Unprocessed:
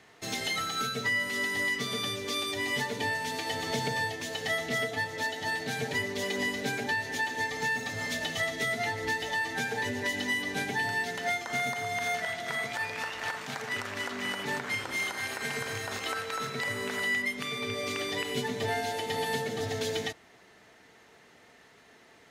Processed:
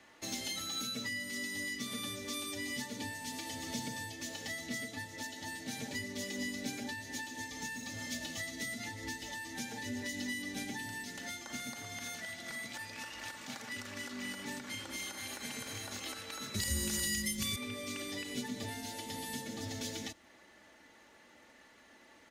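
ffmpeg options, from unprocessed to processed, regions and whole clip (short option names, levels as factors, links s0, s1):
-filter_complex "[0:a]asettb=1/sr,asplit=3[s0][s1][s2];[s0]atrim=end=16.544[s3];[s1]atrim=start=16.54:end=17.56,asetpts=PTS-STARTPTS,afade=t=in:d=0.004:c=qsin,afade=t=out:st=1.016:d=0.004:c=qsin,bass=f=250:g=12,treble=f=4000:g=14,aeval=exprs='sgn(val(0))*max(abs(val(0))-0.00188,0)':c=same,afreqshift=-34[s4];[s2]atrim=start=17.556[s5];[s3][s4]acrossfade=d=0.004:c1=hsin:c2=qsin[s6];[s6][s5]acrossfade=d=0.004:c1=qsin:c2=hsin,aecho=1:1:3.5:0.61,acrossover=split=320|3000[s7][s8][s9];[s8]acompressor=threshold=0.00708:ratio=6[s10];[s7][s10][s9]amix=inputs=3:normalize=0,volume=0.631"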